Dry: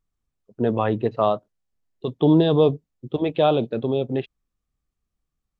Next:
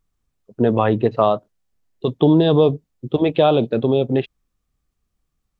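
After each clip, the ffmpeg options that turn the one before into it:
ffmpeg -i in.wav -af "acompressor=threshold=-18dB:ratio=2.5,volume=6.5dB" out.wav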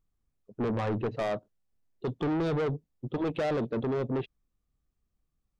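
ffmpeg -i in.wav -af "tiltshelf=frequency=930:gain=3,asoftclip=type=tanh:threshold=-18dB,volume=-8dB" out.wav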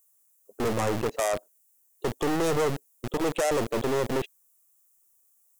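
ffmpeg -i in.wav -filter_complex "[0:a]acrossover=split=390|3400[link_01][link_02][link_03];[link_01]acrusher=bits=3:dc=4:mix=0:aa=0.000001[link_04];[link_03]aexciter=amount=12.3:drive=6.1:freq=6200[link_05];[link_04][link_02][link_05]amix=inputs=3:normalize=0,volume=5dB" out.wav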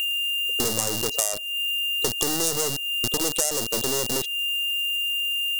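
ffmpeg -i in.wav -af "aexciter=amount=5.4:drive=8.8:freq=3900,aeval=exprs='val(0)+0.0398*sin(2*PI*2800*n/s)':channel_layout=same,acompressor=threshold=-27dB:ratio=4,volume=5.5dB" out.wav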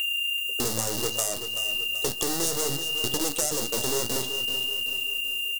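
ffmpeg -i in.wav -filter_complex "[0:a]flanger=delay=9.5:depth=8.4:regen=57:speed=0.62:shape=triangular,asplit=2[link_01][link_02];[link_02]asoftclip=type=tanh:threshold=-22dB,volume=-4.5dB[link_03];[link_01][link_03]amix=inputs=2:normalize=0,aecho=1:1:382|764|1146|1528|1910:0.316|0.149|0.0699|0.0328|0.0154,volume=-1.5dB" out.wav

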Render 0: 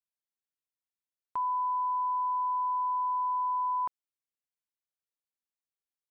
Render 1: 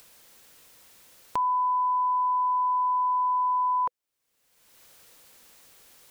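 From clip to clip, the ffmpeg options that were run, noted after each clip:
ffmpeg -i in.wav -af "equalizer=frequency=500:width=5.1:gain=5.5,acompressor=mode=upward:threshold=-33dB:ratio=2.5,volume=5dB" out.wav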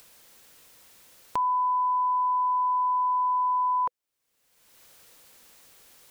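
ffmpeg -i in.wav -af anull out.wav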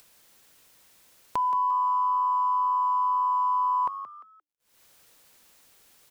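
ffmpeg -i in.wav -filter_complex "[0:a]aeval=exprs='sgn(val(0))*max(abs(val(0))-0.00112,0)':channel_layout=same,asplit=4[link_01][link_02][link_03][link_04];[link_02]adelay=174,afreqshift=98,volume=-11.5dB[link_05];[link_03]adelay=348,afreqshift=196,volume=-21.1dB[link_06];[link_04]adelay=522,afreqshift=294,volume=-30.8dB[link_07];[link_01][link_05][link_06][link_07]amix=inputs=4:normalize=0" out.wav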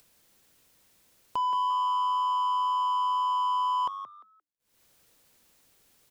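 ffmpeg -i in.wav -filter_complex "[0:a]asplit=2[link_01][link_02];[link_02]adynamicsmooth=sensitivity=5:basefreq=630,volume=-1dB[link_03];[link_01][link_03]amix=inputs=2:normalize=0,asoftclip=type=tanh:threshold=-16.5dB,volume=-5.5dB" out.wav

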